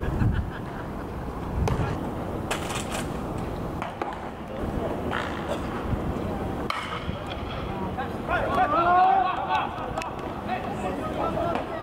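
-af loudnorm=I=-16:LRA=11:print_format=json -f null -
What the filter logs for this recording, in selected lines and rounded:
"input_i" : "-27.6",
"input_tp" : "-9.8",
"input_lra" : "5.9",
"input_thresh" : "-37.6",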